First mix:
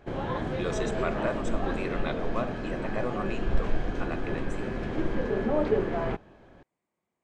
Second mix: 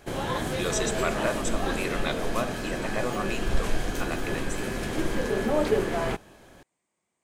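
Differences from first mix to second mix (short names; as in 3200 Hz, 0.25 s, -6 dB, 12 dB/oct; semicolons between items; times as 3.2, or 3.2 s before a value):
speech: add air absorption 82 m; master: remove tape spacing loss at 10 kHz 30 dB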